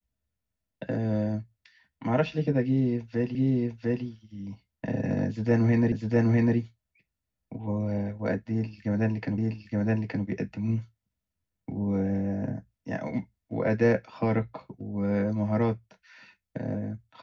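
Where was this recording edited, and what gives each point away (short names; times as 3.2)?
3.35 repeat of the last 0.7 s
5.92 repeat of the last 0.65 s
9.38 repeat of the last 0.87 s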